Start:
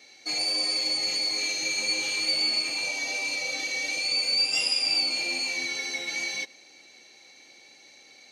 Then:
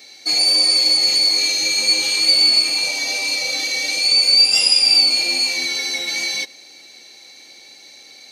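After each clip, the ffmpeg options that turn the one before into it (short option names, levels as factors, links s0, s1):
-af "aexciter=amount=2.4:drive=1.8:freq=3700,volume=2.11"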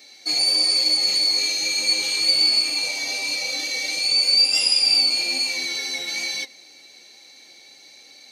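-af "flanger=delay=3.3:depth=4.2:regen=76:speed=1.1:shape=sinusoidal"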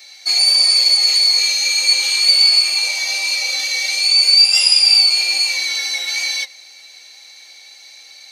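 -af "highpass=850,volume=2.11"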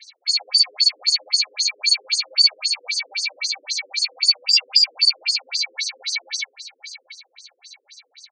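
-af "equalizer=f=320:t=o:w=0.34:g=-11,aecho=1:1:682|1364|2046:0.224|0.0739|0.0244,afftfilt=real='re*between(b*sr/1024,350*pow(6600/350,0.5+0.5*sin(2*PI*3.8*pts/sr))/1.41,350*pow(6600/350,0.5+0.5*sin(2*PI*3.8*pts/sr))*1.41)':imag='im*between(b*sr/1024,350*pow(6600/350,0.5+0.5*sin(2*PI*3.8*pts/sr))/1.41,350*pow(6600/350,0.5+0.5*sin(2*PI*3.8*pts/sr))*1.41)':win_size=1024:overlap=0.75"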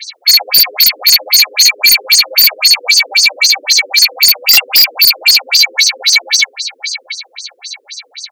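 -af "aeval=exprs='0.841*sin(PI/2*5.01*val(0)/0.841)':c=same"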